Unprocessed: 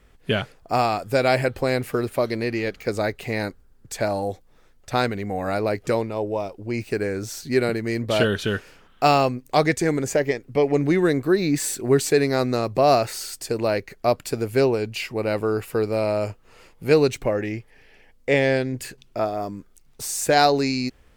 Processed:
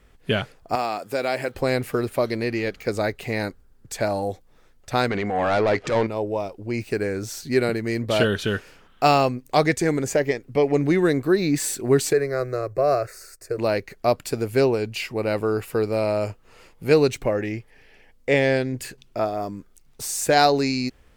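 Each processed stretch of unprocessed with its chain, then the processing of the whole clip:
0.75–1.55 s: block-companded coder 7-bit + high-pass 220 Hz + compression 1.5:1, threshold -28 dBFS
5.10–6.07 s: distance through air 89 m + overdrive pedal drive 18 dB, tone 4.8 kHz, clips at -10.5 dBFS + transient shaper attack -9 dB, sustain +4 dB
12.13–13.58 s: companding laws mixed up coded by A + treble shelf 3.3 kHz -8.5 dB + static phaser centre 870 Hz, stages 6
whole clip: none

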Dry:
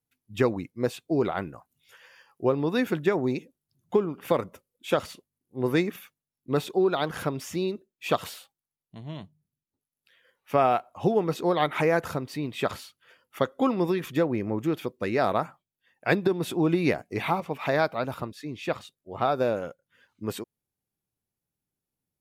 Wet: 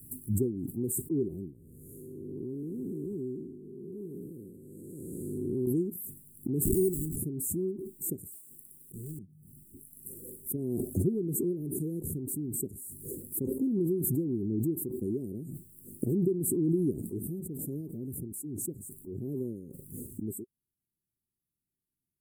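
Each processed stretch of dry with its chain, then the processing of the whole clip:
1.53–5.67 s: spectral blur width 437 ms + loudspeaker Doppler distortion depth 0.18 ms
6.65–7.16 s: zero-crossing glitches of -27.5 dBFS + sample-rate reducer 3.1 kHz + comb 0.9 ms, depth 91%
8.32–9.19 s: square wave that keeps the level + bass shelf 190 Hz -12 dB + doubling 33 ms -11 dB
whole clip: Chebyshev band-stop 390–8000 Hz, order 5; treble shelf 10 kHz +4.5 dB; swell ahead of each attack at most 21 dB/s; trim -4 dB

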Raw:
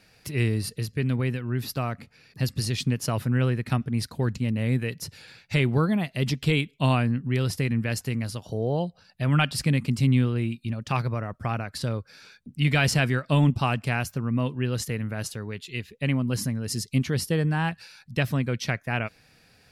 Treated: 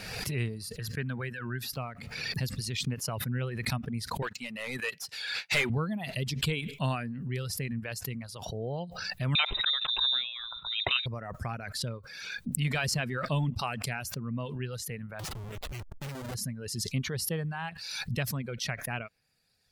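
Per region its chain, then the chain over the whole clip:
0.79–1.71 s: high-pass 84 Hz + peaking EQ 1.6 kHz +12.5 dB 0.39 oct
4.22–5.70 s: tilt EQ +2.5 dB/octave + overdrive pedal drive 25 dB, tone 3.2 kHz, clips at -8.5 dBFS + upward expansion 2.5:1, over -42 dBFS
9.35–11.06 s: peaking EQ 1.1 kHz +8 dB 1 oct + frequency inversion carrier 3.8 kHz
15.19–16.35 s: treble shelf 3.6 kHz -3 dB + Schmitt trigger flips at -38.5 dBFS
whole clip: reverb removal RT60 1.5 s; peaking EQ 300 Hz -6.5 dB 0.37 oct; swell ahead of each attack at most 36 dB/s; trim -7 dB

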